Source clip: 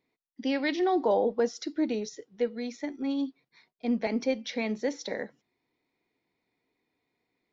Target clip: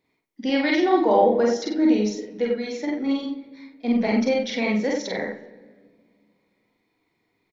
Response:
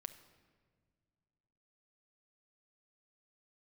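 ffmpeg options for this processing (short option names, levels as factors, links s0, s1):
-filter_complex "[0:a]aecho=1:1:38|48:0.473|0.668,asplit=2[s0][s1];[1:a]atrim=start_sample=2205,lowpass=3700,adelay=47[s2];[s1][s2]afir=irnorm=-1:irlink=0,volume=1.5[s3];[s0][s3]amix=inputs=2:normalize=0,volume=1.5"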